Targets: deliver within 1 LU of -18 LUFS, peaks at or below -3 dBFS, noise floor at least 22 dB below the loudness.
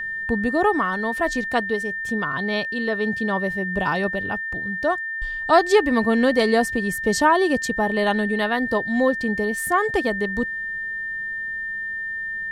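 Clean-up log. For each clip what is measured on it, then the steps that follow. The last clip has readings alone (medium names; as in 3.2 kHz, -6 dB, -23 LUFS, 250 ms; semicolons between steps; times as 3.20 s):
steady tone 1.8 kHz; tone level -26 dBFS; loudness -22.0 LUFS; peak level -4.5 dBFS; loudness target -18.0 LUFS
-> band-stop 1.8 kHz, Q 30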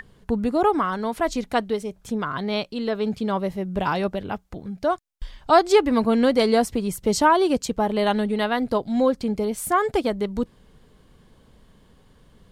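steady tone not found; loudness -23.0 LUFS; peak level -5.5 dBFS; loudness target -18.0 LUFS
-> trim +5 dB; peak limiter -3 dBFS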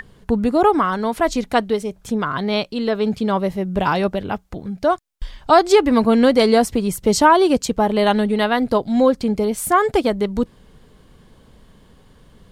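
loudness -18.0 LUFS; peak level -3.0 dBFS; noise floor -51 dBFS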